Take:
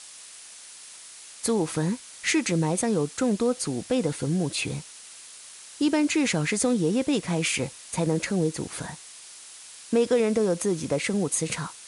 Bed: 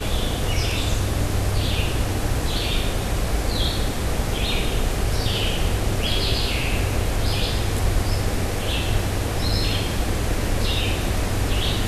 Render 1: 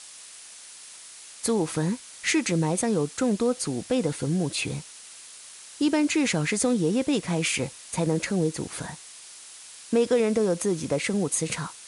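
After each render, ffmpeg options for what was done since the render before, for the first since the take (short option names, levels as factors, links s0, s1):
-af anull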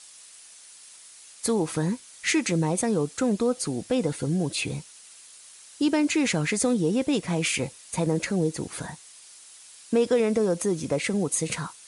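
-af "afftdn=nr=6:nf=-46"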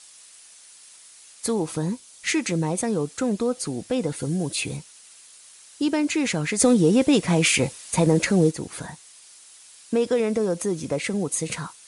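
-filter_complex "[0:a]asettb=1/sr,asplit=3[s0][s1][s2];[s0]atrim=end=1.664[s3];[s1]atrim=start=1.66:end=2.27,asetpts=PTS-STARTPTS,afade=t=in:d=0.004:c=qsin,afade=t=out:st=0.606:d=0.004:c=qsin,equalizer=f=1800:w=1.5:g=-6[s4];[s2]atrim=start=2.266[s5];[s3][s4]acrossfade=d=0.004:c1=hsin:c2=qsin[s6];[s6][s5]acrossfade=d=0.004:c1=qsin:c2=hsin,asettb=1/sr,asplit=3[s7][s8][s9];[s7]atrim=end=4.164[s10];[s8]atrim=start=4.16:end=4.77,asetpts=PTS-STARTPTS,afade=t=in:d=0.004:c=qsin,afade=t=out:st=0.606:d=0.004:c=qsin,highshelf=f=9400:g=9[s11];[s9]atrim=start=4.766[s12];[s10][s11]acrossfade=d=0.004:c1=hsin:c2=qsin[s13];[s13][s12]acrossfade=d=0.004:c1=qsin:c2=hsin,asplit=3[s14][s15][s16];[s14]afade=t=out:st=6.58:d=0.02[s17];[s15]acontrast=66,afade=t=in:st=6.58:d=0.02,afade=t=out:st=8.5:d=0.02[s18];[s16]afade=t=in:st=8.5:d=0.02[s19];[s17][s18][s19]amix=inputs=3:normalize=0"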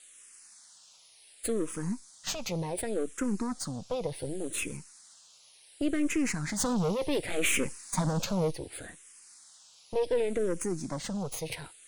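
-filter_complex "[0:a]aeval=exprs='(tanh(11.2*val(0)+0.7)-tanh(0.7))/11.2':c=same,asplit=2[s0][s1];[s1]afreqshift=-0.68[s2];[s0][s2]amix=inputs=2:normalize=1"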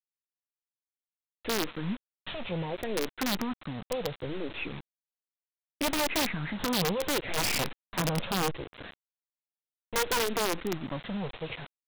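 -af "aresample=8000,acrusher=bits=6:mix=0:aa=0.000001,aresample=44100,aeval=exprs='(mod(12.6*val(0)+1,2)-1)/12.6':c=same"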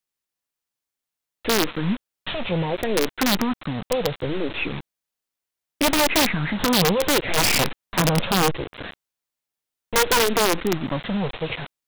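-af "volume=2.99"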